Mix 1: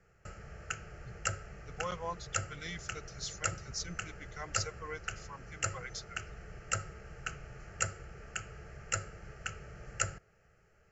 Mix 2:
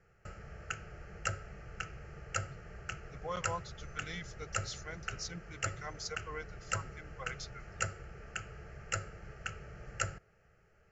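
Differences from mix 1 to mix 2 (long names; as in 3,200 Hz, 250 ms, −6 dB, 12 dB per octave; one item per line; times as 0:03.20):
speech: entry +1.45 s
master: add high-frequency loss of the air 61 metres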